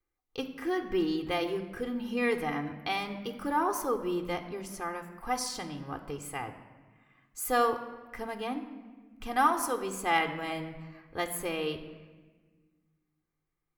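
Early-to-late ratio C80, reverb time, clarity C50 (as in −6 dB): 12.0 dB, 1.4 s, 10.5 dB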